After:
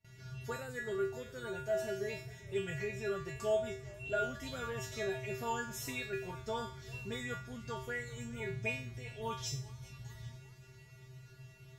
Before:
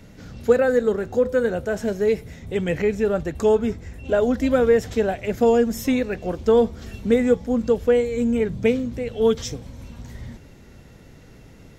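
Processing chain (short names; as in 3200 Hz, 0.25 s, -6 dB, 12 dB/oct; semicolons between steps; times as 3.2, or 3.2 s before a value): bell 440 Hz -7 dB 1.9 oct; resonator 130 Hz, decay 0.41 s, harmonics odd, mix 100%; gate with hold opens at -58 dBFS; warbling echo 0.395 s, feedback 54%, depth 122 cents, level -23 dB; gain +7.5 dB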